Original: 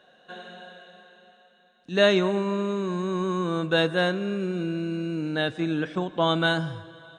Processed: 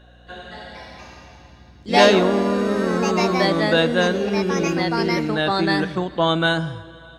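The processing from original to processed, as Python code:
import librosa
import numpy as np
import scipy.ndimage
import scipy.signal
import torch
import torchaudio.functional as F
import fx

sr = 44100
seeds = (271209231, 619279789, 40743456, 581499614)

y = fx.add_hum(x, sr, base_hz=60, snr_db=27)
y = fx.echo_pitch(y, sr, ms=272, semitones=3, count=3, db_per_echo=-3.0)
y = y * librosa.db_to_amplitude(4.0)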